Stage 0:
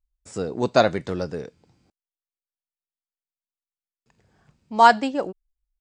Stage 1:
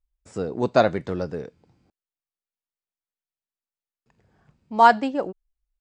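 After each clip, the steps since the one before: high shelf 3400 Hz -9 dB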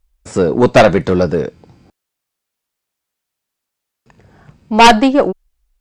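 one diode to ground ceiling -15.5 dBFS; sine folder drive 11 dB, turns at -3 dBFS; gain +1.5 dB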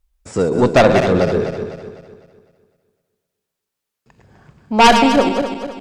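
regenerating reverse delay 0.126 s, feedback 63%, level -6 dB; gain -3.5 dB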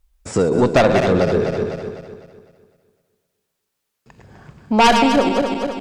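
compressor 2:1, threshold -21 dBFS, peak gain reduction 8 dB; gain +4.5 dB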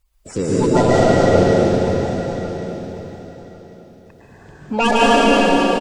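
bin magnitudes rounded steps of 30 dB; feedback echo 1.097 s, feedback 17%, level -14.5 dB; plate-style reverb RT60 3.3 s, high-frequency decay 1×, pre-delay 0.11 s, DRR -7 dB; gain -4.5 dB

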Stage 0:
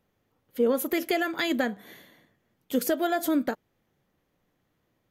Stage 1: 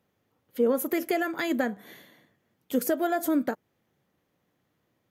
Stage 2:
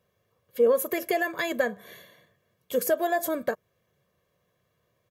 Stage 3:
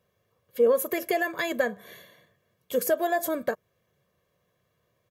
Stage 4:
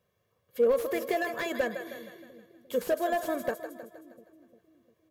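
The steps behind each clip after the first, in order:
HPF 79 Hz; dynamic EQ 3600 Hz, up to -8 dB, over -49 dBFS, Q 1.2
comb 1.8 ms, depth 77%
nothing audible
split-band echo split 400 Hz, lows 0.35 s, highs 0.157 s, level -10.5 dB; slew limiter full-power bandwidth 84 Hz; gain -3 dB

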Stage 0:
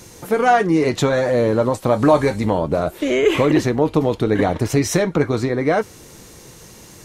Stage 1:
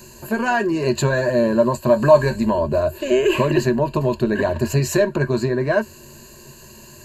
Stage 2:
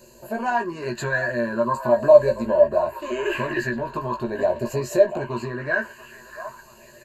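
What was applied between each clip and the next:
ripple EQ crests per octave 1.4, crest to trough 17 dB; gain -4 dB
doubler 17 ms -4 dB; delay with a stepping band-pass 0.685 s, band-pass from 880 Hz, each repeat 0.7 oct, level -7 dB; LFO bell 0.42 Hz 530–1800 Hz +13 dB; gain -11 dB

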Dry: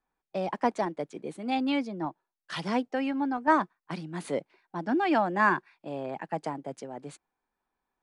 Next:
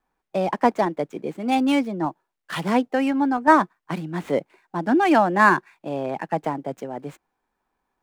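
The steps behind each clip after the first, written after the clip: median filter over 9 samples; gain +8 dB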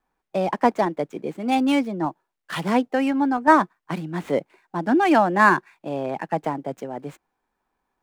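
nothing audible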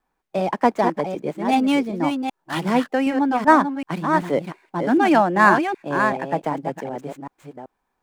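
reverse delay 0.383 s, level -6 dB; gain +1 dB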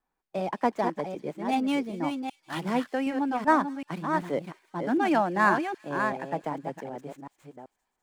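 thin delay 0.201 s, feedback 60%, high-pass 3900 Hz, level -14 dB; gain -8 dB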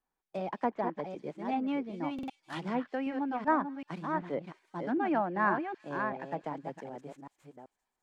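treble ducked by the level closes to 2000 Hz, closed at -22.5 dBFS; stuck buffer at 2.14, samples 2048, times 2; gain -5.5 dB

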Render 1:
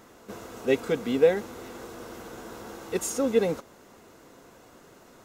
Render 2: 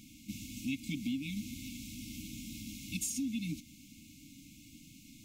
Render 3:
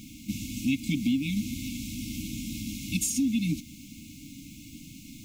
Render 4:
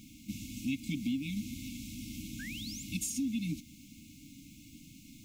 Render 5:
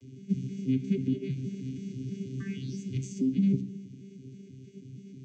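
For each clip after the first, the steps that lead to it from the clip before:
FFT band-reject 320–2100 Hz; compressor 6:1, threshold -36 dBFS, peak gain reduction 11.5 dB; gain +2.5 dB
low shelf 480 Hz +3 dB; added noise violet -72 dBFS; gain +7.5 dB
painted sound rise, 2.39–2.83, 1500–7700 Hz -38 dBFS; gain -7.5 dB
arpeggiated vocoder bare fifth, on C3, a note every 0.16 s; reverb RT60 0.80 s, pre-delay 3 ms, DRR 10 dB

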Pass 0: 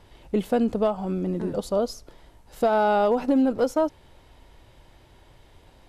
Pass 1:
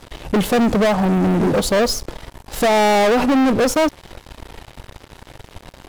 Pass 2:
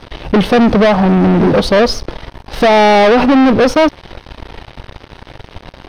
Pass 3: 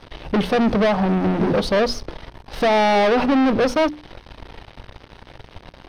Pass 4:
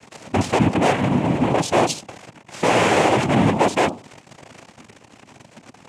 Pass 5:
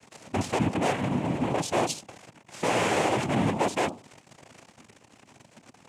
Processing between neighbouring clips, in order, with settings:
sample leveller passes 5
polynomial smoothing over 15 samples; gain +6.5 dB
notches 60/120/180/240/300/360/420 Hz; gain -8 dB
noise vocoder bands 4
high shelf 7800 Hz +6.5 dB; gain -8.5 dB

